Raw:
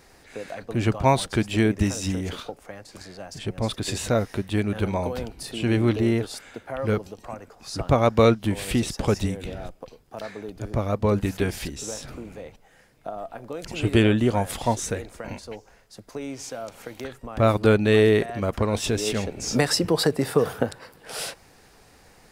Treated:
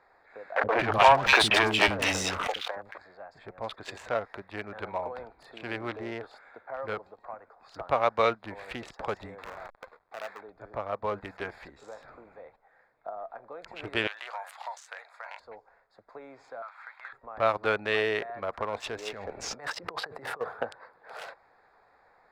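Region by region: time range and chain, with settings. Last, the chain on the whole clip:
0.56–2.98 sample leveller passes 3 + three bands offset in time mids, lows, highs 70/230 ms, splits 350/2100 Hz + backwards sustainer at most 25 dB/s
9.38–10.41 half-waves squared off + low shelf 500 Hz -7 dB
14.07–15.4 HPF 700 Hz 24 dB/oct + high shelf 2000 Hz +12 dB + compressor 16:1, threshold -28 dBFS
16.62–17.13 HPF 1100 Hz 24 dB/oct + overdrive pedal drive 16 dB, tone 2800 Hz, clips at -23 dBFS
19.13–20.41 low shelf 140 Hz +5 dB + negative-ratio compressor -29 dBFS
whole clip: Wiener smoothing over 15 samples; three-band isolator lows -22 dB, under 590 Hz, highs -15 dB, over 4000 Hz

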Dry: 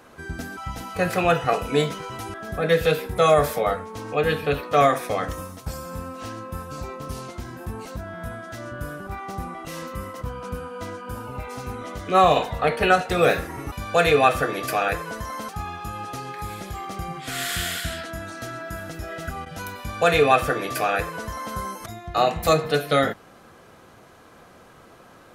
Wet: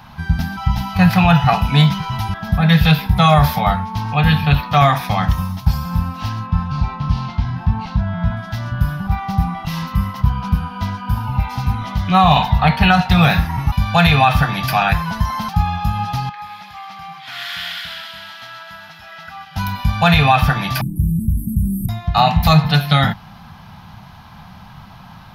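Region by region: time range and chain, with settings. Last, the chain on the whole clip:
6.46–8.37 LPF 4300 Hz + doubler 41 ms -13.5 dB
16.29–19.56 HPF 1400 Hz + tilt -4.5 dB/oct + thin delay 0.129 s, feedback 76%, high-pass 2200 Hz, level -6 dB
20.81–21.89 brick-wall FIR band-stop 390–7700 Hz + notches 50/100/150/200/250 Hz + fast leveller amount 70%
whole clip: EQ curve 190 Hz 0 dB, 320 Hz -24 dB, 490 Hz -29 dB, 870 Hz -2 dB, 1200 Hz -12 dB, 2000 Hz -11 dB, 3400 Hz -6 dB, 5200 Hz -8 dB, 7900 Hz -26 dB, 13000 Hz -10 dB; maximiser +18.5 dB; gain -1 dB

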